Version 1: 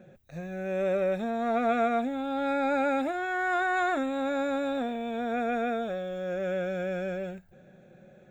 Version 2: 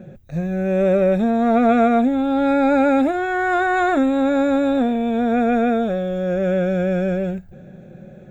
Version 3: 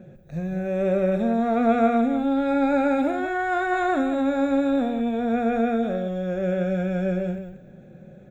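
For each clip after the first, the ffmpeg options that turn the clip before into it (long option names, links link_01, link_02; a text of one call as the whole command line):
ffmpeg -i in.wav -af "lowshelf=frequency=390:gain=12,volume=6dB" out.wav
ffmpeg -i in.wav -af "aecho=1:1:43.73|183.7:0.251|0.355,volume=-6dB" out.wav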